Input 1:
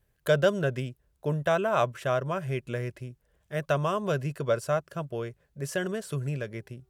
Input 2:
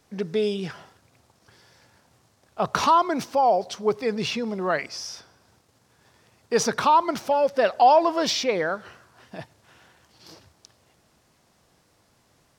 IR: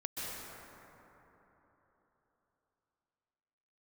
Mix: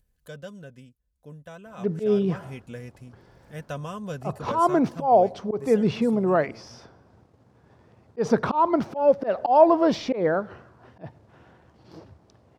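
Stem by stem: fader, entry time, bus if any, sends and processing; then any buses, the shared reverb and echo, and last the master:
1.88 s -19 dB -> 2.53 s -9 dB -> 5.48 s -9 dB -> 5.79 s -16 dB, 0.00 s, no send, tone controls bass +9 dB, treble +13 dB; comb 4 ms, depth 54%; upward compressor, threshold -39 dBFS
-1.0 dB, 1.65 s, no send, tilt shelf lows +8.5 dB, about 1300 Hz; auto swell 0.145 s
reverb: off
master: high shelf 5800 Hz -10 dB

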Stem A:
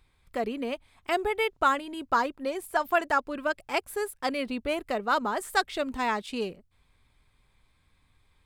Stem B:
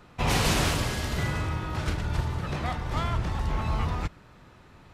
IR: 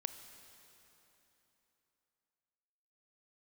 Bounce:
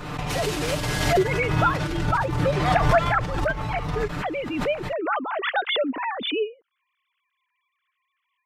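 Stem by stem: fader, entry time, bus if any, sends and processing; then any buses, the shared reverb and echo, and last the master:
+2.0 dB, 0.00 s, no send, sine-wave speech
+2.5 dB, 0.00 s, no send, limiter -20.5 dBFS, peak gain reduction 7.5 dB; negative-ratio compressor -31 dBFS, ratio -0.5; comb 6.7 ms, depth 63%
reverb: off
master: backwards sustainer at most 40 dB/s

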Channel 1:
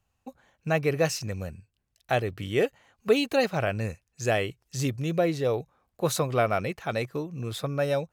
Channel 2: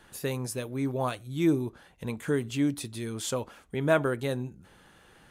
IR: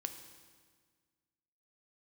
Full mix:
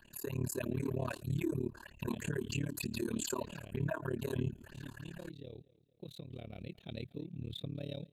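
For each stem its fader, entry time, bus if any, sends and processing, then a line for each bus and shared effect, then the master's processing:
6.19 s -19 dB -> 6.97 s -12 dB, 0.00 s, no send, echo send -22 dB, EQ curve 290 Hz 0 dB, 1300 Hz -25 dB, 3700 Hz +3 dB, 5200 Hz -19 dB, 15000 Hz -10 dB; compressor, threshold -29 dBFS, peak gain reduction 8 dB
-1.0 dB, 0.00 s, no send, no echo send, ripple EQ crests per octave 1.4, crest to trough 12 dB; compressor 16:1, threshold -29 dBFS, peak gain reduction 15.5 dB; phaser stages 6, 3.2 Hz, lowest notch 140–1500 Hz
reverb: off
echo: feedback echo 0.231 s, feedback 45%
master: AGC gain up to 8 dB; AM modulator 36 Hz, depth 100%; limiter -26 dBFS, peak gain reduction 8.5 dB

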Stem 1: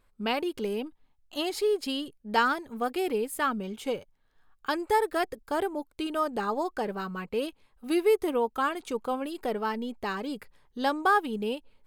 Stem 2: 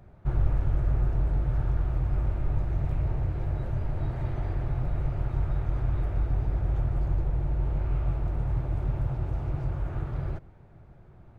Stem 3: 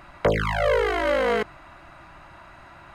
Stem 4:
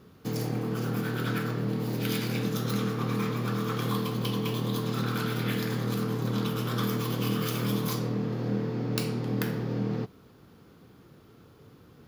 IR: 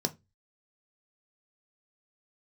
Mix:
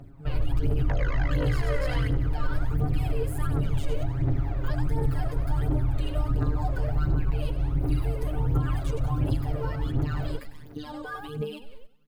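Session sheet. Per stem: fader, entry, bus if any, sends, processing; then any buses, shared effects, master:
-0.5 dB, 0.00 s, bus A, no send, echo send -22 dB, compressor 3:1, threshold -36 dBFS, peak gain reduction 13 dB; AGC gain up to 10.5 dB
-5.0 dB, 0.00 s, no bus, no send, no echo send, bell 290 Hz +12.5 dB 0.51 oct; comb 7.3 ms, depth 93%
-10.0 dB, 0.65 s, no bus, no send, echo send -10 dB, rippled Chebyshev low-pass 6700 Hz, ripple 6 dB
-19.0 dB, 1.25 s, bus A, no send, no echo send, compressor, threshold -34 dBFS, peak gain reduction 10 dB
bus A: 0.0 dB, robotiser 150 Hz; limiter -27.5 dBFS, peak gain reduction 17.5 dB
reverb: off
echo: feedback echo 96 ms, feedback 48%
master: phaser 1.4 Hz, delay 2.1 ms, feedback 63%; limiter -16 dBFS, peak gain reduction 8.5 dB

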